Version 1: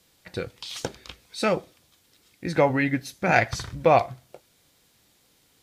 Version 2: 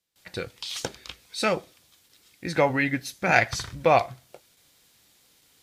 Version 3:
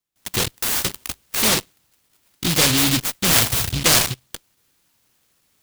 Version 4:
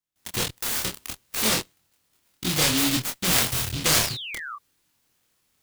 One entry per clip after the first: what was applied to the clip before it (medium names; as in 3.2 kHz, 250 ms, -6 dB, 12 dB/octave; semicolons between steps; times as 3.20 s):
gate with hold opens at -52 dBFS; tilt shelf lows -3 dB, about 1.1 kHz
in parallel at -3 dB: fuzz box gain 38 dB, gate -43 dBFS; on the sum: delay time shaken by noise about 3.4 kHz, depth 0.47 ms; trim -2.5 dB
painted sound fall, 3.94–4.56 s, 1.1–7.4 kHz -30 dBFS; chorus 0.6 Hz, depth 4.9 ms; trim -2 dB